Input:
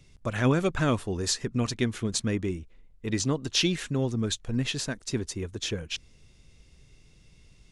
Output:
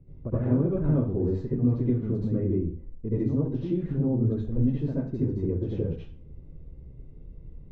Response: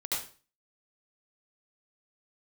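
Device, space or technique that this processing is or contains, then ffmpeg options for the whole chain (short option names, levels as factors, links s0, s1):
television next door: -filter_complex "[0:a]acompressor=threshold=0.0282:ratio=6,lowpass=400[s0];[1:a]atrim=start_sample=2205[s1];[s0][s1]afir=irnorm=-1:irlink=0,volume=2.51"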